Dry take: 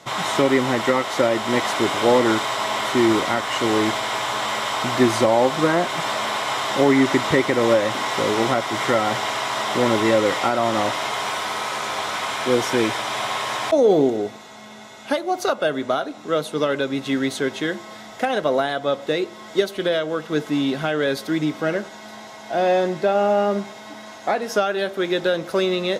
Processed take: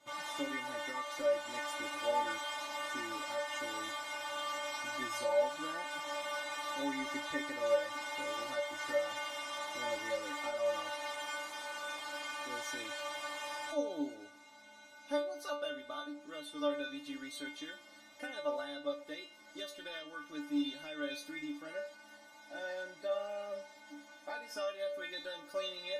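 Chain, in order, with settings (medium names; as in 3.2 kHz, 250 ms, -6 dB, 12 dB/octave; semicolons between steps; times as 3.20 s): dynamic bell 230 Hz, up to -8 dB, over -33 dBFS, Q 0.71; inharmonic resonator 290 Hz, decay 0.38 s, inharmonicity 0.002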